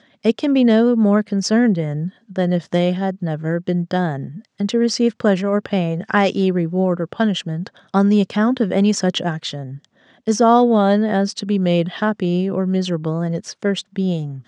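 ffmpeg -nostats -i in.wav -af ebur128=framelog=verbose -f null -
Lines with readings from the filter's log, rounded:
Integrated loudness:
  I:         -18.6 LUFS
  Threshold: -28.7 LUFS
Loudness range:
  LRA:         2.9 LU
  Threshold: -38.8 LUFS
  LRA low:   -20.4 LUFS
  LRA high:  -17.5 LUFS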